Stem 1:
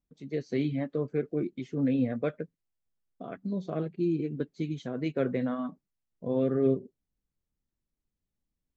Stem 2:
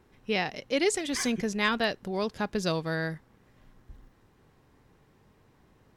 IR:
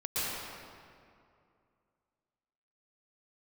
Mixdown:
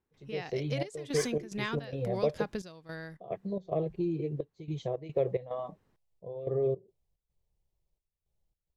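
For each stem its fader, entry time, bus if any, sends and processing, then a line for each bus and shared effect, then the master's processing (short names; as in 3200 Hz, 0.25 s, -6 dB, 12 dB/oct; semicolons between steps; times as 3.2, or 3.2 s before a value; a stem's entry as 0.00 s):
-0.5 dB, 0.00 s, no send, high shelf 3300 Hz -10.5 dB; compressor 2.5:1, threshold -32 dBFS, peak gain reduction 8.5 dB; fixed phaser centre 610 Hz, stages 4
2.6 s -11.5 dB -> 3.17 s -20 dB, 0.00 s, no send, compressor, threshold -29 dBFS, peak gain reduction 8.5 dB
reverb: off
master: AGC gain up to 9 dB; step gate ".xxxxx..xx.xx" 109 bpm -12 dB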